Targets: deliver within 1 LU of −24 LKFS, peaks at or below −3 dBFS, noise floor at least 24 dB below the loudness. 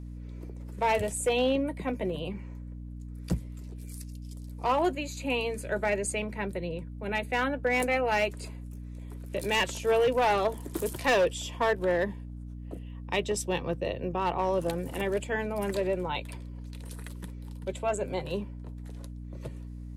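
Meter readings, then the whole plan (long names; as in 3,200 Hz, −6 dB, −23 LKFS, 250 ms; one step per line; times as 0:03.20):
share of clipped samples 0.9%; peaks flattened at −19.5 dBFS; mains hum 60 Hz; hum harmonics up to 300 Hz; level of the hum −38 dBFS; integrated loudness −29.5 LKFS; sample peak −19.5 dBFS; target loudness −24.0 LKFS
→ clipped peaks rebuilt −19.5 dBFS
hum removal 60 Hz, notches 5
level +5.5 dB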